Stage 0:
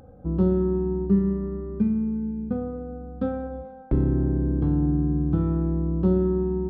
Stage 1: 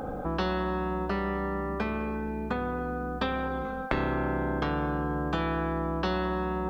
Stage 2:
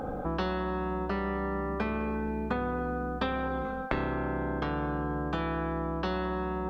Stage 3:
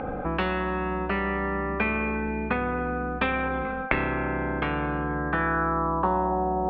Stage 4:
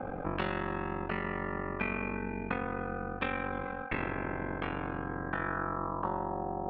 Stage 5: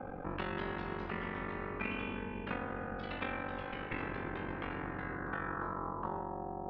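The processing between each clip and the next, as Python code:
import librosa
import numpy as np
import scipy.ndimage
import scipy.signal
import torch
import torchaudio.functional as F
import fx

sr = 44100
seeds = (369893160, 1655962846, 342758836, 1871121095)

y1 = fx.peak_eq(x, sr, hz=100.0, db=-12.5, octaves=1.2)
y1 = fx.spectral_comp(y1, sr, ratio=4.0)
y1 = y1 * librosa.db_to_amplitude(2.5)
y2 = fx.rider(y1, sr, range_db=10, speed_s=0.5)
y2 = fx.high_shelf(y2, sr, hz=5300.0, db=-5.5)
y2 = y2 * librosa.db_to_amplitude(-1.5)
y3 = fx.filter_sweep_lowpass(y2, sr, from_hz=2400.0, to_hz=740.0, start_s=5.0, end_s=6.45, q=4.0)
y3 = y3 * librosa.db_to_amplitude(3.0)
y4 = fx.rider(y3, sr, range_db=10, speed_s=2.0)
y4 = y4 * np.sin(2.0 * np.pi * 23.0 * np.arange(len(y4)) / sr)
y4 = y4 * librosa.db_to_amplitude(-5.5)
y5 = fx.notch(y4, sr, hz=630.0, q=12.0)
y5 = fx.echo_pitch(y5, sr, ms=239, semitones=2, count=3, db_per_echo=-6.0)
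y5 = y5 * librosa.db_to_amplitude(-5.5)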